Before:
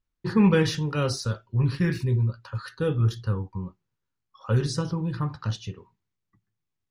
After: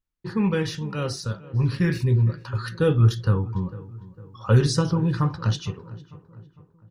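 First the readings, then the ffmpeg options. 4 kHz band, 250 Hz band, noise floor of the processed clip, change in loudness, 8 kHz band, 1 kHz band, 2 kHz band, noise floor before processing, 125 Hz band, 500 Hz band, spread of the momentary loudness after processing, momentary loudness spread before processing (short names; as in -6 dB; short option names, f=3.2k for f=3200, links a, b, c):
+1.5 dB, +0.5 dB, -61 dBFS, +2.5 dB, +2.0 dB, +2.0 dB, +1.0 dB, -82 dBFS, +4.0 dB, +2.0 dB, 18 LU, 15 LU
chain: -filter_complex "[0:a]dynaudnorm=f=460:g=7:m=11.5dB,asplit=2[a][b];[b]adelay=454,lowpass=f=1.7k:p=1,volume=-17.5dB,asplit=2[c][d];[d]adelay=454,lowpass=f=1.7k:p=1,volume=0.49,asplit=2[e][f];[f]adelay=454,lowpass=f=1.7k:p=1,volume=0.49,asplit=2[g][h];[h]adelay=454,lowpass=f=1.7k:p=1,volume=0.49[i];[a][c][e][g][i]amix=inputs=5:normalize=0,volume=-4dB"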